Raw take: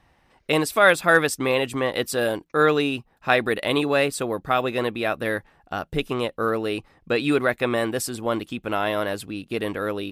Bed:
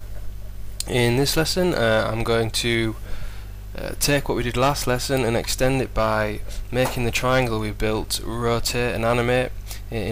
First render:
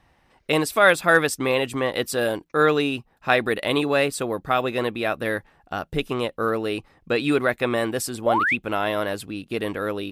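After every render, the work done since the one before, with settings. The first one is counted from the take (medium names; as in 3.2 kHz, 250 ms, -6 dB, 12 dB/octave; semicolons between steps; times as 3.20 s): 8.26–8.56 s: painted sound rise 530–2800 Hz -21 dBFS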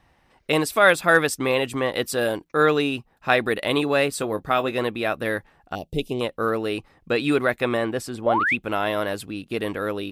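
4.10–4.72 s: doubling 19 ms -11 dB; 5.75–6.21 s: Butterworth band-stop 1.4 kHz, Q 0.65; 7.77–8.46 s: treble shelf 5.1 kHz -12 dB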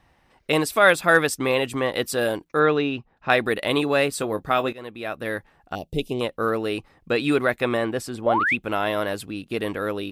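2.59–3.30 s: distance through air 170 m; 4.73–5.92 s: fade in equal-power, from -19 dB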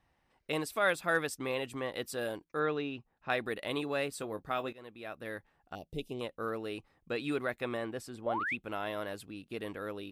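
trim -13 dB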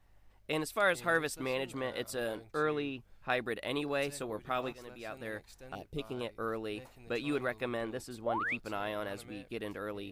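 add bed -32 dB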